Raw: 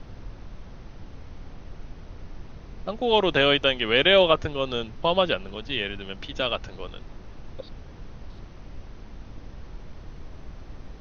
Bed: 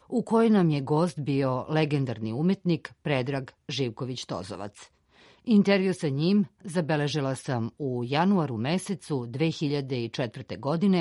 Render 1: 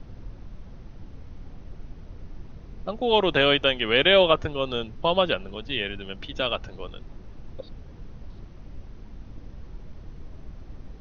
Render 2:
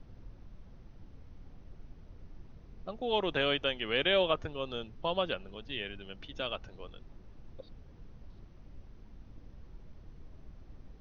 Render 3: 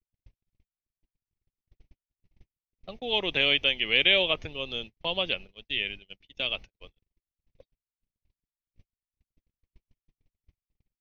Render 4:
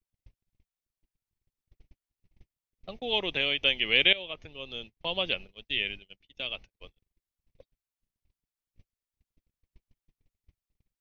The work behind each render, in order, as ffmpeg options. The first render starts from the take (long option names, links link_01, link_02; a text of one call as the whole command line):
ffmpeg -i in.wav -af "afftdn=noise_reduction=6:noise_floor=-44" out.wav
ffmpeg -i in.wav -af "volume=-10dB" out.wav
ffmpeg -i in.wav -af "agate=range=-57dB:threshold=-42dB:ratio=16:detection=peak,highshelf=frequency=1800:width_type=q:width=3:gain=6.5" out.wav
ffmpeg -i in.wav -filter_complex "[0:a]asplit=5[link_01][link_02][link_03][link_04][link_05];[link_01]atrim=end=3.63,asetpts=PTS-STARTPTS,afade=type=out:start_time=3.03:duration=0.6:silence=0.446684[link_06];[link_02]atrim=start=3.63:end=4.13,asetpts=PTS-STARTPTS,afade=type=in:duration=0.004:curve=hsin:silence=0.446684,afade=type=out:start_time=0.496:duration=0.004:curve=hsin:silence=0.125893[link_07];[link_03]atrim=start=4.13:end=6.082,asetpts=PTS-STARTPTS,afade=type=in:duration=1.26:silence=0.125893[link_08];[link_04]atrim=start=6.078:end=6.712,asetpts=PTS-STARTPTS,volume=-5dB[link_09];[link_05]atrim=start=6.708[link_10];[link_06][link_07][link_08]concat=n=3:v=0:a=1[link_11];[link_11][link_09]acrossfade=duration=0.004:curve1=hsin:curve2=hsin[link_12];[link_12][link_10]acrossfade=duration=0.004:curve1=hsin:curve2=hsin" out.wav